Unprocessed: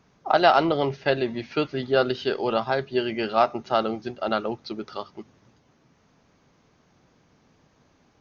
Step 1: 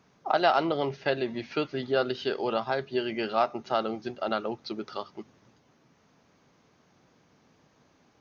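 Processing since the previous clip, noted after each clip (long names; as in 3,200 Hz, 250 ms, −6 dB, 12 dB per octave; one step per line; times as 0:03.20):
in parallel at 0 dB: downward compressor, threshold −28 dBFS, peak gain reduction 15 dB
on the sum: high-pass filter 120 Hz 6 dB per octave
level −7 dB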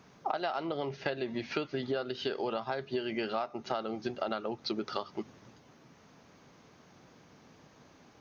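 downward compressor 10 to 1, threshold −35 dBFS, peak gain reduction 17.5 dB
level +5 dB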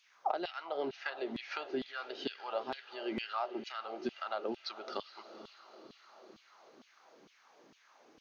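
feedback delay with all-pass diffusion 491 ms, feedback 58%, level −13.5 dB
auto-filter high-pass saw down 2.2 Hz 220–3,300 Hz
level −5.5 dB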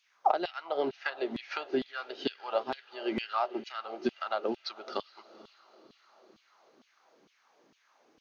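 expander for the loud parts 1.5 to 1, over −53 dBFS
level +8.5 dB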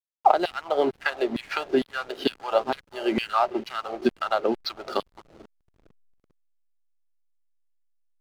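slack as between gear wheels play −45 dBFS
level +8 dB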